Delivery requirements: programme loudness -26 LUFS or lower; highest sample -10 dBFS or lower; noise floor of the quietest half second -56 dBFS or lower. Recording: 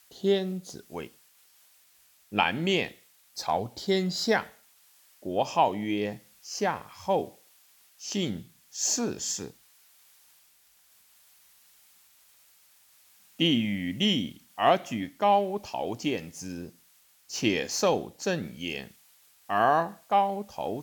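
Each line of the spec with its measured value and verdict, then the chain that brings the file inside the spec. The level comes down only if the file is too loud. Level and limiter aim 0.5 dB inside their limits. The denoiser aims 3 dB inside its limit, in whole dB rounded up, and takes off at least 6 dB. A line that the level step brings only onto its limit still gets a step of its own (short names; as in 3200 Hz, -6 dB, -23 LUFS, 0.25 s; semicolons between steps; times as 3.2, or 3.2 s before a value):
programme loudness -28.5 LUFS: OK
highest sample -8.5 dBFS: fail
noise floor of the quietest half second -62 dBFS: OK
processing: limiter -10.5 dBFS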